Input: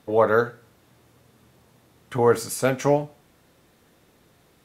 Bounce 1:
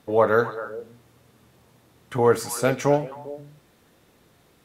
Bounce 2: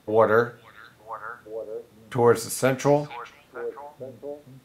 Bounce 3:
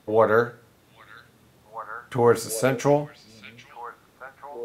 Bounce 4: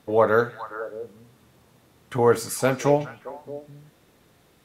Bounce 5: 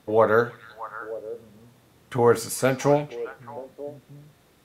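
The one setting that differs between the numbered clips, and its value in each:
repeats whose band climbs or falls, time: 132 ms, 459 ms, 789 ms, 208 ms, 311 ms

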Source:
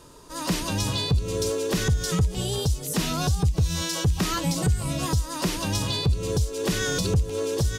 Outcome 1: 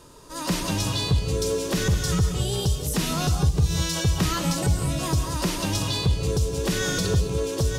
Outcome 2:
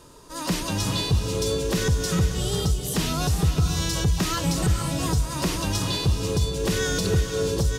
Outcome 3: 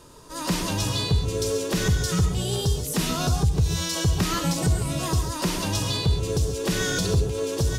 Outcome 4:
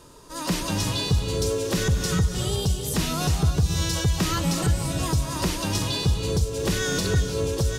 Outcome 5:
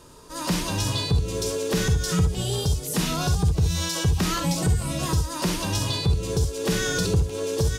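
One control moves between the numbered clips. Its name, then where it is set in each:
gated-style reverb, gate: 230 ms, 530 ms, 160 ms, 360 ms, 90 ms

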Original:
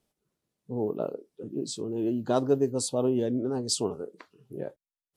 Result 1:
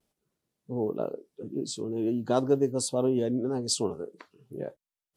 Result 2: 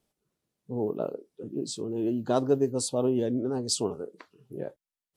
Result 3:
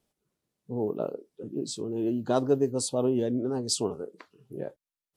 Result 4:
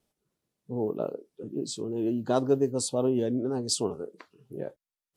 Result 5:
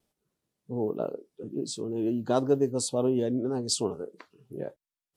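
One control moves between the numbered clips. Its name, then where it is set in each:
vibrato, rate: 0.43 Hz, 14 Hz, 6.5 Hz, 2.7 Hz, 1.3 Hz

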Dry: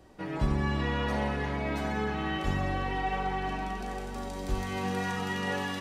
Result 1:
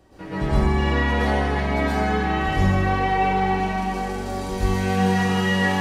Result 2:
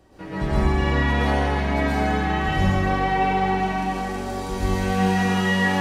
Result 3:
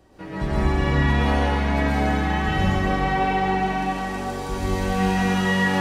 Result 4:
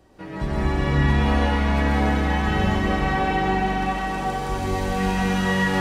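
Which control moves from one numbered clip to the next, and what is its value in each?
plate-style reverb, RT60: 0.51 s, 1.1 s, 2.3 s, 5.3 s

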